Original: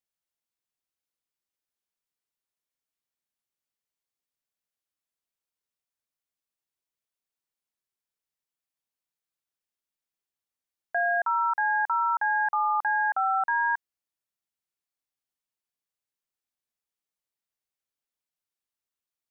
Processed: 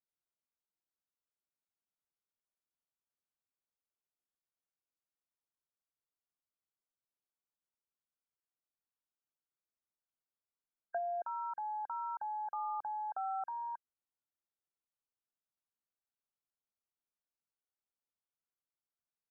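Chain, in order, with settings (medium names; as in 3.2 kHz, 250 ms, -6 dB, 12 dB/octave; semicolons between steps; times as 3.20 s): low-pass that closes with the level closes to 690 Hz, closed at -23.5 dBFS; brick-wall FIR low-pass 1.6 kHz; trim -6 dB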